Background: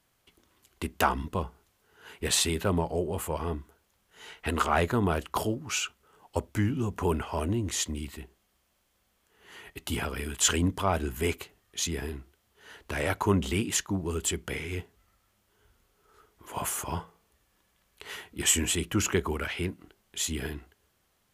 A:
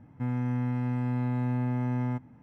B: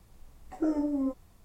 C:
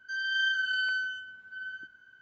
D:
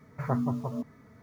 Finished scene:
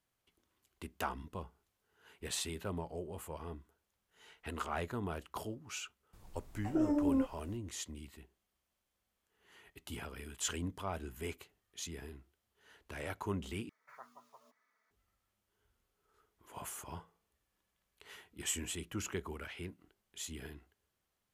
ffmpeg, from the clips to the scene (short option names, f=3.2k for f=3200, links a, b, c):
-filter_complex "[0:a]volume=-13dB[a];[2:a]alimiter=limit=-22.5dB:level=0:latency=1:release=88[b];[4:a]highpass=1.2k[c];[a]asplit=2[d][e];[d]atrim=end=13.694[f];[c]atrim=end=1.22,asetpts=PTS-STARTPTS,volume=-13dB[g];[e]atrim=start=14.906[h];[b]atrim=end=1.44,asetpts=PTS-STARTPTS,volume=-1dB,afade=t=in:d=0.004:c=hsin,afade=t=out:st=1.436:d=0.004:c=hsin,adelay=6130[i];[f][g]acrossfade=d=0.004:c1=hsin:c2=hsin[j];[j][h]acrossfade=d=0.004:c1=hsin:c2=hsin[k];[k][i]amix=inputs=2:normalize=0"